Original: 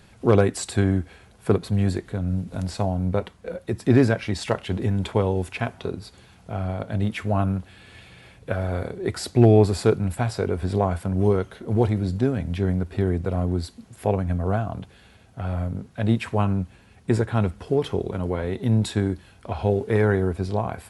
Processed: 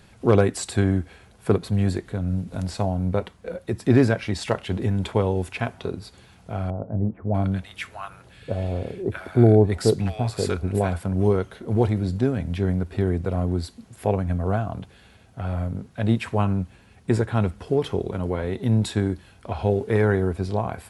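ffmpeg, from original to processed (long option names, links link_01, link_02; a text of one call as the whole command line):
ffmpeg -i in.wav -filter_complex "[0:a]asettb=1/sr,asplit=3[link_01][link_02][link_03];[link_01]atrim=end=6.704[link_04];[link_02]atrim=start=6.7:end=10.93,asetpts=PTS-STARTPTS,afade=type=in:duration=0.004:curve=qsin,afade=type=out:start_time=4.226:duration=0.004:curve=qsin,acrossover=split=940[link_05][link_06];[link_06]adelay=640[link_07];[link_05][link_07]amix=inputs=2:normalize=0,atrim=end_sample=186543[link_08];[link_03]atrim=start=10.926[link_09];[link_04][link_08]acrossfade=duration=0.004:curve1=hsin:curve2=qsin[link_10];[link_10][link_09]acrossfade=duration=0.004:curve1=qsin:curve2=hsin" out.wav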